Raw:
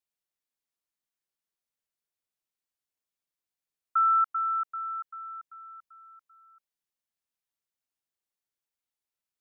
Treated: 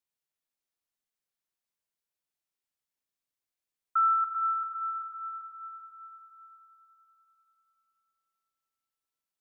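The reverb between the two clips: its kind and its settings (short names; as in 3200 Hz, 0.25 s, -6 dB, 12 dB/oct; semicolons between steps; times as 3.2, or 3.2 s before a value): Schroeder reverb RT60 3.8 s, combs from 30 ms, DRR 6.5 dB; gain -1.5 dB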